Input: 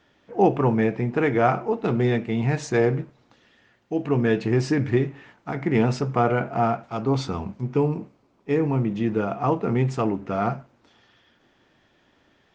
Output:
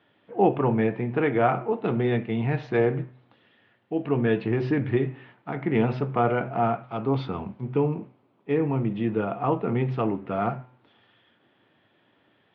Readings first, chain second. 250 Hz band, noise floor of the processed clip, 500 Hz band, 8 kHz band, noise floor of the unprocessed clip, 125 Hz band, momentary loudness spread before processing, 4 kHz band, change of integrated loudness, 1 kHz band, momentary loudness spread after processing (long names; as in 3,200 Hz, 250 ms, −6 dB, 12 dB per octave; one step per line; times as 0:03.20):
−2.5 dB, −66 dBFS, −1.5 dB, can't be measured, −63 dBFS, −3.0 dB, 9 LU, −5.0 dB, −2.0 dB, −2.0 dB, 9 LU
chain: elliptic band-pass filter 100–3,400 Hz, stop band 40 dB
hum removal 126.4 Hz, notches 20
level −1.5 dB